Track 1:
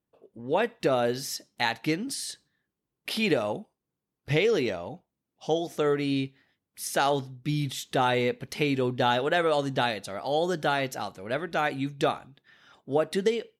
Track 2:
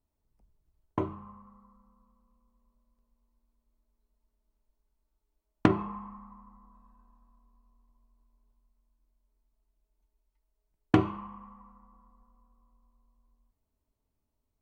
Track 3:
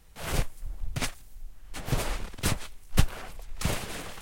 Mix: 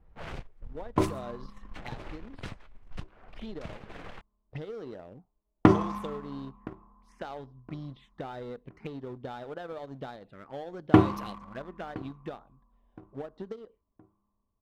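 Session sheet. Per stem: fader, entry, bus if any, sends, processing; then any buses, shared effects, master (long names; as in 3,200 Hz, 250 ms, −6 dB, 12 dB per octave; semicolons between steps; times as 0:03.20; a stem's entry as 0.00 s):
−6.0 dB, 0.25 s, bus A, no send, no echo send, phaser swept by the level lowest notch 200 Hz, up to 2,400 Hz, full sweep at −25 dBFS
+2.0 dB, 0.00 s, no bus, no send, echo send −22.5 dB, high-shelf EQ 3,500 Hz −9.5 dB
−0.5 dB, 0.00 s, bus A, no send, no echo send, no processing
bus A: 0.0 dB, downward compressor 12 to 1, threshold −38 dBFS, peak gain reduction 24 dB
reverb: not used
echo: repeating echo 1,018 ms, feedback 44%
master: low-pass that shuts in the quiet parts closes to 920 Hz, open at −29 dBFS; leveller curve on the samples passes 1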